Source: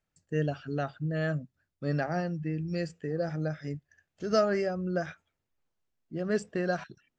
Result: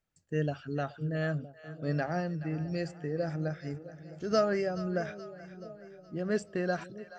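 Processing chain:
echo with a time of its own for lows and highs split 630 Hz, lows 659 ms, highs 425 ms, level −14.5 dB
level −1.5 dB

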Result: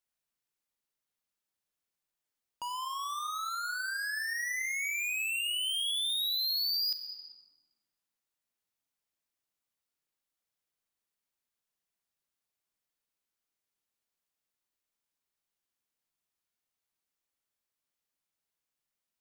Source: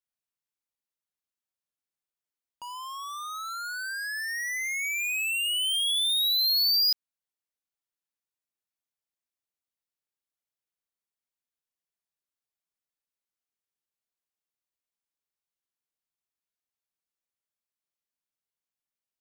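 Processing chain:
on a send at −8 dB: convolution reverb RT60 1.4 s, pre-delay 34 ms
on the sum: downward compressor 2.5 to 1, threshold −39 dBFS, peak gain reduction 12 dB
level +3 dB

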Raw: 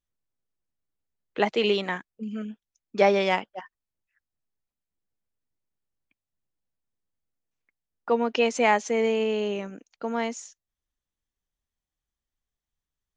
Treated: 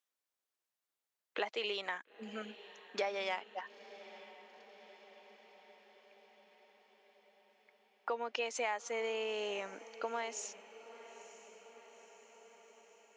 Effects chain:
high-pass filter 590 Hz 12 dB per octave
downward compressor 4 to 1, threshold −39 dBFS, peak gain reduction 18 dB
feedback delay with all-pass diffusion 934 ms, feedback 62%, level −16 dB
level +2.5 dB

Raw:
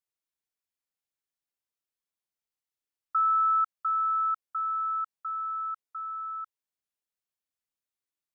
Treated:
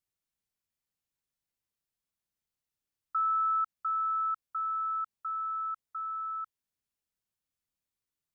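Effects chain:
bass and treble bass +10 dB, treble +1 dB
in parallel at +0.5 dB: brickwall limiter −32 dBFS, peak gain reduction 11.5 dB
on the sum: level −6.5 dB

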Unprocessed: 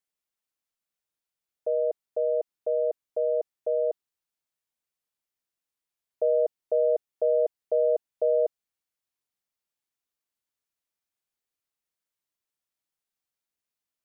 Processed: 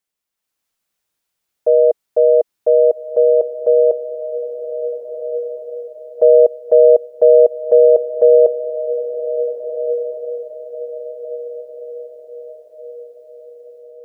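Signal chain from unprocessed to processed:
dynamic equaliser 480 Hz, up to +3 dB, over −32 dBFS, Q 3.6
automatic gain control gain up to 7 dB
on a send: feedback delay with all-pass diffusion 1,603 ms, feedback 44%, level −10.5 dB
on the sum: level +5.5 dB

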